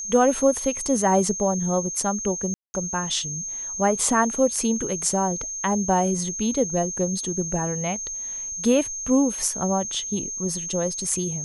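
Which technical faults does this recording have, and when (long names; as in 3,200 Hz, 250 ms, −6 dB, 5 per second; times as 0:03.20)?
whistle 6,400 Hz −29 dBFS
0:02.54–0:02.74: drop-out 200 ms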